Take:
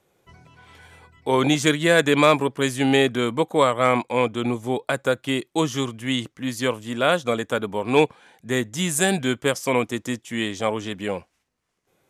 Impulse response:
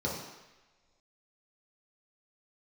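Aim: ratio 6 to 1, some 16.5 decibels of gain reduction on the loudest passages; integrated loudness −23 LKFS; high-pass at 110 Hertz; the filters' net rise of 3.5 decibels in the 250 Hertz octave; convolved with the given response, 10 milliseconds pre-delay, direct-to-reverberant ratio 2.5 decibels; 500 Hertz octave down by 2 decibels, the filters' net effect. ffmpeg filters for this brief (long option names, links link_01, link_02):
-filter_complex "[0:a]highpass=110,equalizer=frequency=250:width_type=o:gain=5.5,equalizer=frequency=500:width_type=o:gain=-4,acompressor=threshold=-31dB:ratio=6,asplit=2[link_01][link_02];[1:a]atrim=start_sample=2205,adelay=10[link_03];[link_02][link_03]afir=irnorm=-1:irlink=0,volume=-9.5dB[link_04];[link_01][link_04]amix=inputs=2:normalize=0,volume=7.5dB"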